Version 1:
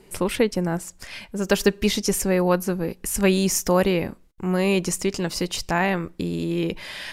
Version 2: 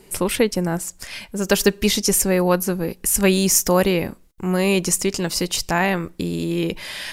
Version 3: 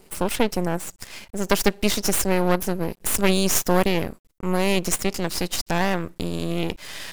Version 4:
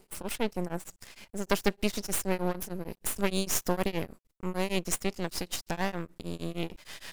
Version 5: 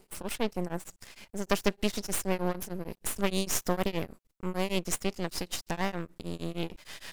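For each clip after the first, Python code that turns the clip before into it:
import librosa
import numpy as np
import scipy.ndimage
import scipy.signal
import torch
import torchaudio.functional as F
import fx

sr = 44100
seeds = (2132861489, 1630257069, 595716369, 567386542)

y1 = fx.high_shelf(x, sr, hz=5600.0, db=8.0)
y1 = y1 * librosa.db_to_amplitude(2.0)
y2 = np.maximum(y1, 0.0)
y3 = y2 * np.abs(np.cos(np.pi * 6.5 * np.arange(len(y2)) / sr))
y3 = y3 * librosa.db_to_amplitude(-6.5)
y4 = fx.doppler_dist(y3, sr, depth_ms=0.22)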